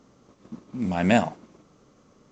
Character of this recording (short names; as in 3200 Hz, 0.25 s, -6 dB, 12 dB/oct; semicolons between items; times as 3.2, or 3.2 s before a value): A-law